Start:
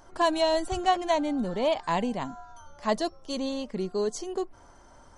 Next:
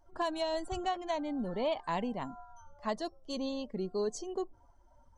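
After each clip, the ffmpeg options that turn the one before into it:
-af "afftdn=nr=17:nf=-46,alimiter=limit=-19dB:level=0:latency=1:release=458,volume=-5dB"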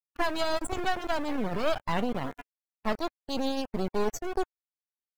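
-af "acrusher=bits=4:dc=4:mix=0:aa=0.000001,afftdn=nr=17:nf=-48,volume=9dB"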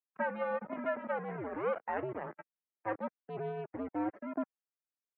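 -af "highpass=f=340:t=q:w=0.5412,highpass=f=340:t=q:w=1.307,lowpass=f=2.2k:t=q:w=0.5176,lowpass=f=2.2k:t=q:w=0.7071,lowpass=f=2.2k:t=q:w=1.932,afreqshift=-110,volume=-4.5dB"

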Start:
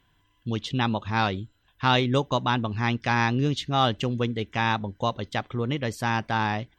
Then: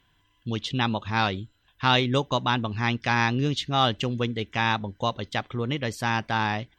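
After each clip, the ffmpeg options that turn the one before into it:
-af "equalizer=f=3.5k:t=o:w=2.4:g=3.5,volume=-1dB"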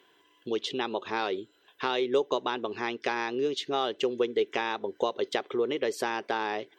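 -af "acompressor=threshold=-32dB:ratio=6,highpass=f=400:t=q:w=4.9,volume=3.5dB"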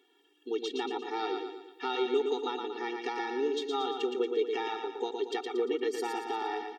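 -filter_complex "[0:a]asplit=2[a][b];[b]aecho=0:1:116|232|348|464|580|696:0.562|0.259|0.119|0.0547|0.0252|0.0116[c];[a][c]amix=inputs=2:normalize=0,afftfilt=real='re*eq(mod(floor(b*sr/1024/240),2),1)':imag='im*eq(mod(floor(b*sr/1024/240),2),1)':win_size=1024:overlap=0.75,volume=-2.5dB"

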